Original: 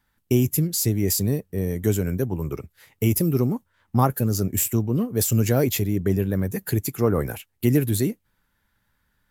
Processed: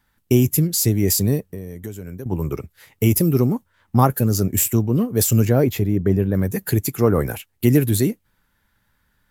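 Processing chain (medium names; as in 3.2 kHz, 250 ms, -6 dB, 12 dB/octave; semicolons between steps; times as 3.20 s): 1.46–2.26 s: compression 5:1, threshold -35 dBFS, peak gain reduction 17 dB; 5.45–6.35 s: peaking EQ 8.8 kHz -12 dB 2.8 oct; trim +4 dB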